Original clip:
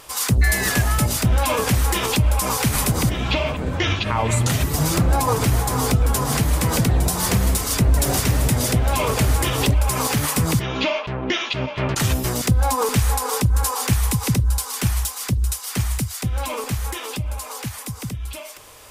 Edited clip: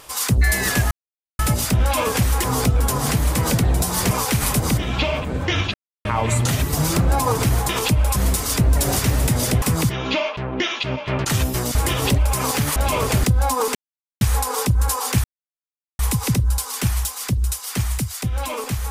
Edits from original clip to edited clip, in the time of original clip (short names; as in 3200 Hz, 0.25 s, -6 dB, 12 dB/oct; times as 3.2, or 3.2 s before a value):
0.91 insert silence 0.48 s
1.96–2.43 swap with 5.7–7.37
4.06 insert silence 0.31 s
8.83–9.31 swap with 10.32–12.45
12.96 insert silence 0.46 s
13.99 insert silence 0.75 s